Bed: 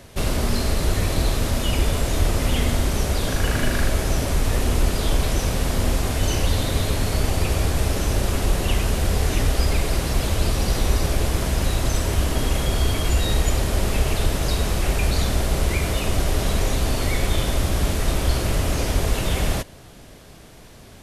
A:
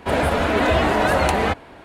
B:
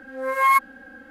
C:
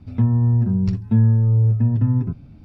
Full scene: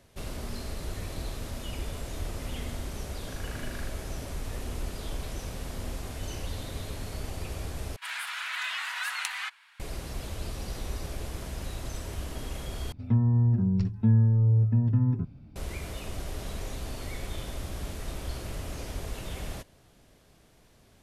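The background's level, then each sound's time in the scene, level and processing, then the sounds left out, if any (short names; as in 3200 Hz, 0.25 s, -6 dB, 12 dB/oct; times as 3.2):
bed -15 dB
7.96 replace with A -4.5 dB + Bessel high-pass 2000 Hz, order 8
12.92 replace with C -6 dB
not used: B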